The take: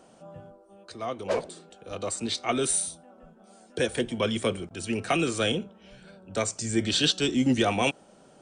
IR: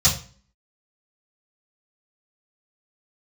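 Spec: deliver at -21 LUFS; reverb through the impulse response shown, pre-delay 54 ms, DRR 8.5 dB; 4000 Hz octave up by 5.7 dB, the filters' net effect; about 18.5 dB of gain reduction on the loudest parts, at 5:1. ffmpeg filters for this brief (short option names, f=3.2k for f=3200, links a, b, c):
-filter_complex "[0:a]equalizer=f=4k:t=o:g=7,acompressor=threshold=-36dB:ratio=5,asplit=2[a][b];[1:a]atrim=start_sample=2205,adelay=54[c];[b][c]afir=irnorm=-1:irlink=0,volume=-23.5dB[d];[a][d]amix=inputs=2:normalize=0,volume=17dB"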